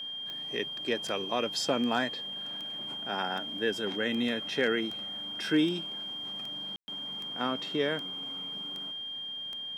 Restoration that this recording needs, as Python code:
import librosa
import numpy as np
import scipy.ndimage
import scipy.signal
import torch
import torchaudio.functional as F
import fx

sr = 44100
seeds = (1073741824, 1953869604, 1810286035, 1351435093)

y = fx.fix_declip(x, sr, threshold_db=-17.0)
y = fx.fix_declick_ar(y, sr, threshold=10.0)
y = fx.notch(y, sr, hz=3200.0, q=30.0)
y = fx.fix_ambience(y, sr, seeds[0], print_start_s=8.92, print_end_s=9.42, start_s=6.76, end_s=6.88)